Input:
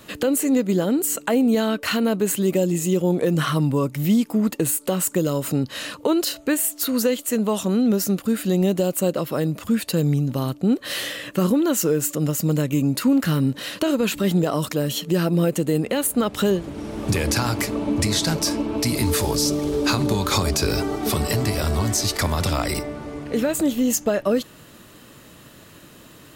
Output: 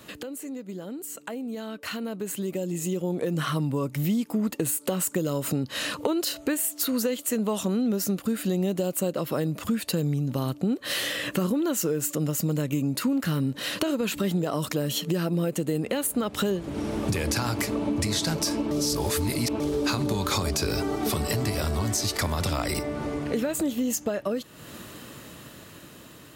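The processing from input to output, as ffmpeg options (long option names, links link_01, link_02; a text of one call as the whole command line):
ffmpeg -i in.wav -filter_complex "[0:a]asplit=3[link_01][link_02][link_03];[link_01]atrim=end=18.712[link_04];[link_02]atrim=start=18.708:end=19.602,asetpts=PTS-STARTPTS,areverse[link_05];[link_03]atrim=start=19.598[link_06];[link_04][link_05]acrossfade=duration=0.004:curve1=hsin:curve2=hsin[link_07];[link_07][link_06]acrossfade=duration=0.004:curve1=hsin:curve2=hsin,acompressor=threshold=-37dB:ratio=3,highpass=44,dynaudnorm=framelen=570:gausssize=9:maxgain=11dB,volume=-2.5dB" out.wav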